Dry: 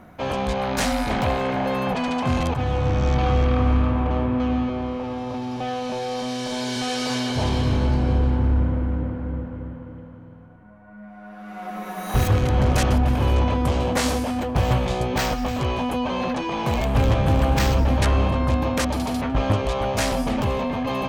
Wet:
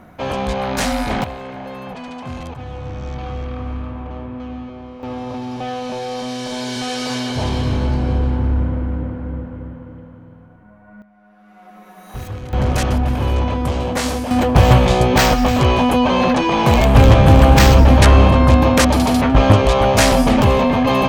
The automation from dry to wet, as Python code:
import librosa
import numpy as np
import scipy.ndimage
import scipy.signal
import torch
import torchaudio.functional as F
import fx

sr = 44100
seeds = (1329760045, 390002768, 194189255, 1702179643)

y = fx.gain(x, sr, db=fx.steps((0.0, 3.0), (1.24, -7.5), (5.03, 2.0), (11.02, -10.0), (12.53, 1.5), (14.31, 10.0)))